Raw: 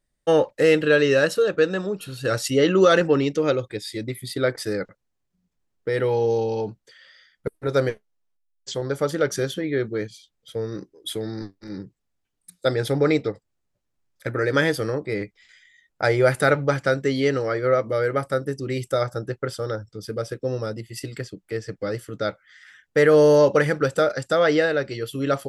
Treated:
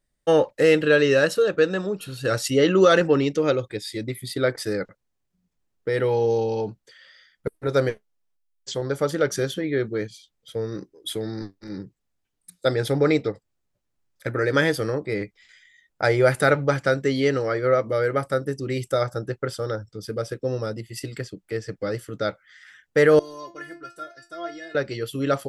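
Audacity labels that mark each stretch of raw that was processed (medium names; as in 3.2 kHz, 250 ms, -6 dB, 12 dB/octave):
23.190000	24.750000	inharmonic resonator 340 Hz, decay 0.28 s, inharmonicity 0.002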